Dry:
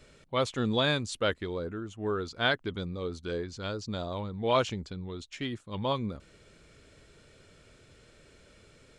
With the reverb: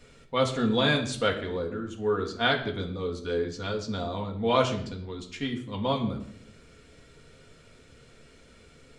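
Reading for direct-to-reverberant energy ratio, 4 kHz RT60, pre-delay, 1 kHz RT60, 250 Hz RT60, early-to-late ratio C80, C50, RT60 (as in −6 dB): 0.0 dB, 0.50 s, 4 ms, 0.60 s, 0.95 s, 12.5 dB, 10.0 dB, 0.65 s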